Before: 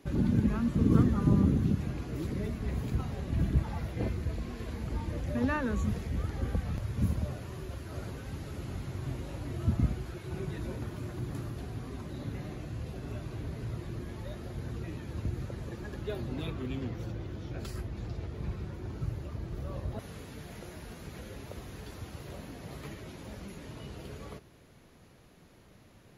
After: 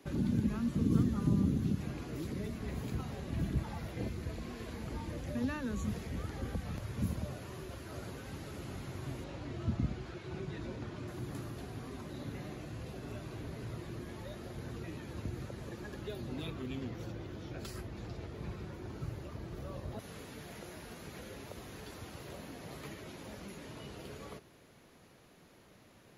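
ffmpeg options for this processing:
-filter_complex "[0:a]asettb=1/sr,asplit=3[a][b][c];[a]atrim=end=9.244[d];[b]atrim=start=9.24:end=11.08,asetpts=PTS-STARTPTS,afade=t=in:d=0.004:c=qsin,afade=t=out:st=1.836:d=0.004:c=qsin,lowpass=5.7k[e];[c]atrim=start=11.076[f];[d][e]acrossfade=d=0.004:c1=hsin:c2=qsin[g];[g][f]acrossfade=d=0.004:c1=qsin:c2=hsin,lowshelf=f=130:g=-10.5,acrossover=split=290|3000[h][i][j];[i]acompressor=threshold=-45dB:ratio=3[k];[h][k][j]amix=inputs=3:normalize=0"

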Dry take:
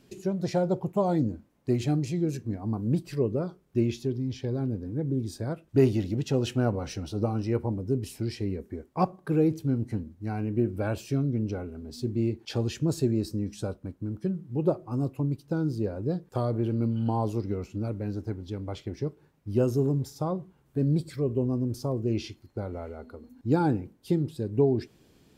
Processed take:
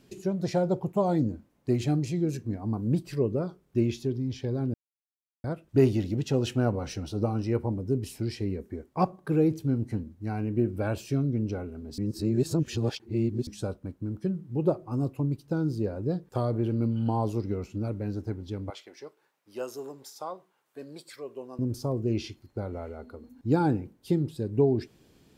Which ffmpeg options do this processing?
-filter_complex "[0:a]asettb=1/sr,asplit=3[a][b][c];[a]atrim=end=18.704[d];[b]atrim=start=18.7:end=21.59,asetpts=PTS-STARTPTS,afade=t=in:d=0.004:c=qsin,afade=t=out:st=2.886:d=0.004:c=qsin,highpass=740[e];[c]atrim=start=21.586[f];[d][e]acrossfade=d=0.004:c1=hsin:c2=qsin[g];[g][f]acrossfade=d=0.004:c1=qsin:c2=hsin,asplit=5[h][i][j][k][l];[h]atrim=end=4.74,asetpts=PTS-STARTPTS,afade=t=out:st=4.736:d=0.004:c=hsin[m];[i]atrim=start=4.74:end=5.44,asetpts=PTS-STARTPTS,volume=0[n];[j]atrim=start=5.44:end=11.982,asetpts=PTS-STARTPTS,afade=t=in:d=0.004:c=hsin[o];[k]atrim=start=11.978:end=13.472,asetpts=PTS-STARTPTS,areverse[p];[l]atrim=start=13.468[q];[m][n][o]concat=n=3:v=0:a=1[r];[r][p]acrossfade=d=0.004:c1=hsin:c2=hsin[s];[s][q]acrossfade=d=0.004:c1=hsin:c2=hsin"

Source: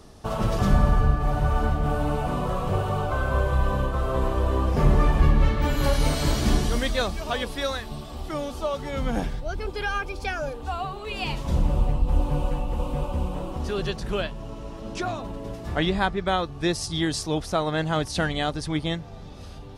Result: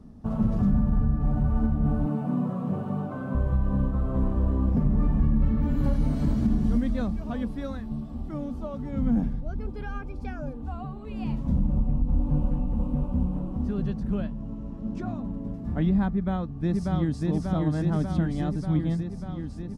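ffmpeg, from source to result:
-filter_complex "[0:a]asettb=1/sr,asplit=3[a][b][c];[a]atrim=end=2.064[d];[b]atrim=start=2.06:end=3.35,asetpts=PTS-STARTPTS,afade=t=in:d=0.004:c=qsin,afade=t=out:st=1.286:d=0.004:c=qsin,highpass=f=140:w=0.5412,highpass=f=140:w=1.3066[e];[c]atrim=start=3.346[f];[d][e]acrossfade=d=0.004:c1=hsin:c2=qsin[g];[g][f]acrossfade=d=0.004:c1=qsin:c2=hsin,asplit=2[h][i];[i]afade=t=in:st=16.1:d=0.01,afade=t=out:st=17.26:d=0.01,aecho=0:1:590|1180|1770|2360|2950|3540|4130|4720|5310|5900|6490|7080:0.841395|0.631046|0.473285|0.354964|0.266223|0.199667|0.14975|0.112313|0.0842345|0.0631759|0.0473819|0.0355364[j];[h][j]amix=inputs=2:normalize=0,firequalizer=gain_entry='entry(120,0);entry(230,10);entry(350,-8);entry(3100,-21)':delay=0.05:min_phase=1,alimiter=limit=-14.5dB:level=0:latency=1:release=145"

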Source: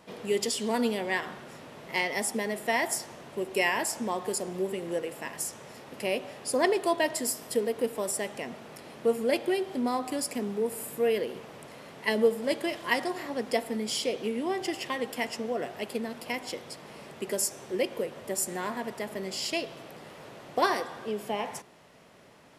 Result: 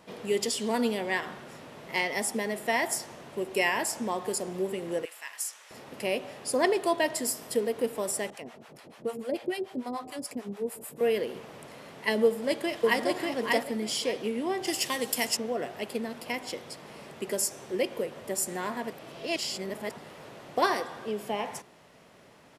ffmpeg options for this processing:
-filter_complex "[0:a]asettb=1/sr,asplit=3[a][b][c];[a]atrim=end=5.054[d];[b]atrim=start=5.05:end=5.71,asetpts=PTS-STARTPTS,afade=t=in:d=0.004:c=qsin,afade=t=out:st=0.656:d=0.004:c=qsin,highpass=1.4k[e];[c]atrim=start=5.706[f];[d][e]acrossfade=d=0.004:c1=hsin:c2=qsin[g];[g][f]acrossfade=d=0.004:c1=qsin:c2=hsin,asettb=1/sr,asplit=3[h][i][j];[h]atrim=end=8.304[k];[i]atrim=start=8.3:end=11.01,asetpts=PTS-STARTPTS,afade=t=in:d=0.004:c=qsin,afade=t=out:st=2.706:d=0.004:c=qsin,acrossover=split=640[l][m];[l]aeval=exprs='val(0)*(1-1/2+1/2*cos(2*PI*6.8*n/s))':c=same[n];[m]aeval=exprs='val(0)*(1-1/2-1/2*cos(2*PI*6.8*n/s))':c=same[o];[n][o]amix=inputs=2:normalize=0[p];[j]atrim=start=11.006[q];[k][p]acrossfade=d=0.004:c1=hsin:c2=qsin[r];[r][q]acrossfade=d=0.004:c1=qsin:c2=hsin,asplit=2[s][t];[t]afade=t=in:st=12.24:d=0.01,afade=t=out:st=13.04:d=0.01,aecho=0:1:590|1180|1770:0.794328|0.158866|0.0317731[u];[s][u]amix=inputs=2:normalize=0,asettb=1/sr,asplit=3[v][w][x];[v]atrim=end=14.674[y];[w]atrim=start=14.67:end=15.37,asetpts=PTS-STARTPTS,afade=t=in:d=0.004:c=qsin,afade=t=out:st=0.696:d=0.004:c=qsin,bass=f=250:g=1,treble=f=4k:g=15[z];[x]atrim=start=15.366[aa];[y][z]acrossfade=d=0.004:c1=hsin:c2=qsin[ab];[ab][aa]acrossfade=d=0.004:c1=qsin:c2=hsin,asplit=3[ac][ad][ae];[ac]atrim=end=18.912[af];[ad]atrim=start=18.908:end=19.982,asetpts=PTS-STARTPTS,areverse[ag];[ae]atrim=start=19.978[ah];[af][ag]acrossfade=d=0.004:c1=hsin:c2=hsin[ai];[ai][ah]acrossfade=d=0.004:c1=hsin:c2=hsin"

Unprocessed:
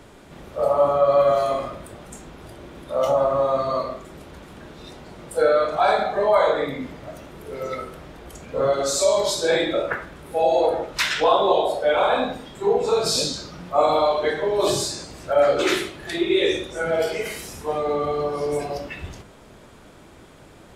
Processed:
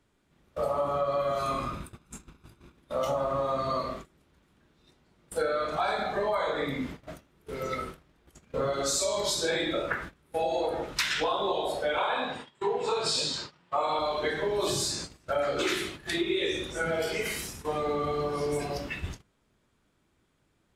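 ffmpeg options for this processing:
-filter_complex "[0:a]asettb=1/sr,asplit=3[a][b][c];[a]atrim=end=1.394[d];[b]atrim=start=1.39:end=2.76,asetpts=PTS-STARTPTS,afade=t=in:d=0.004:c=qsin,afade=t=out:st=1.366:d=0.004:c=qsin,aecho=1:1:0.8:0.46,atrim=end_sample=60417[e];[c]atrim=start=2.756[f];[d][e]acrossfade=d=0.004:c1=hsin:c2=qsin[g];[g][f]acrossfade=d=0.004:c1=qsin:c2=hsin,asettb=1/sr,asplit=3[h][i][j];[h]atrim=end=11.984[k];[i]atrim=start=11.98:end=13.99,asetpts=PTS-STARTPTS,afade=t=in:d=0.004:c=qsin,afade=t=out:st=2.006:d=0.004:c=qsin,highpass=130,equalizer=f=190:t=q:w=4:g=-8,equalizer=f=280:t=q:w=4:g=-6,equalizer=f=950:t=q:w=4:g=7,equalizer=f=1.8k:t=q:w=4:g=4,equalizer=f=2.9k:t=q:w=4:g=5,equalizer=f=6.1k:t=q:w=4:g=-6,lowpass=f=8.7k:w=0.5412,lowpass=f=8.7k:w=1.3066[l];[j]atrim=start=13.986[m];[k][l]acrossfade=d=0.004:c1=hsin:c2=qsin[n];[n][m]acrossfade=d=0.004:c1=qsin:c2=hsin,agate=range=-22dB:threshold=-36dB:ratio=16:detection=peak,equalizer=f=610:w=1:g=-6.5,acompressor=threshold=-25dB:ratio=6"

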